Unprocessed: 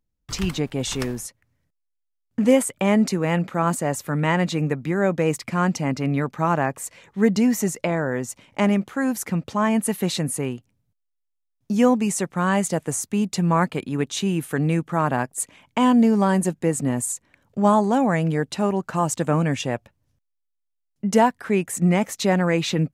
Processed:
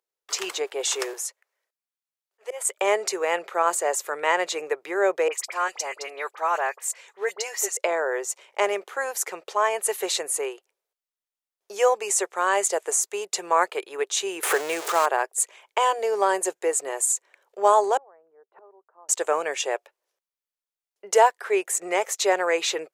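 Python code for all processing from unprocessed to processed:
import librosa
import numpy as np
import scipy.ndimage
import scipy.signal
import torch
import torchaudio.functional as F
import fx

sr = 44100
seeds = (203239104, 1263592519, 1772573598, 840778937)

y = fx.chain(x, sr, fx.highpass(hz=500.0, slope=12),
    fx.auto_swell(attack_ms=313.0), at=(1.13, 2.65))
y = fx.chain(y, sr, fx.highpass(hz=860.0, slope=6),
    fx.dispersion(late='highs', ms=45.0, hz=2000.0), at=(5.28, 7.77))
y = fx.chain(y, sr, fx.zero_step(step_db=-25.0),
    fx.band_squash(depth_pct=70), at=(14.43, 15.06))
y = fx.chain(y, sr, fx.lowpass(hz=1300.0, slope=24),
    fx.gate_flip(shuts_db=-26.0, range_db=-29), at=(17.97, 19.09))
y = fx.dynamic_eq(y, sr, hz=7100.0, q=2.4, threshold_db=-47.0, ratio=4.0, max_db=6)
y = scipy.signal.sosfilt(scipy.signal.ellip(4, 1.0, 40, 390.0, 'highpass', fs=sr, output='sos'), y)
y = F.gain(torch.from_numpy(y), 1.5).numpy()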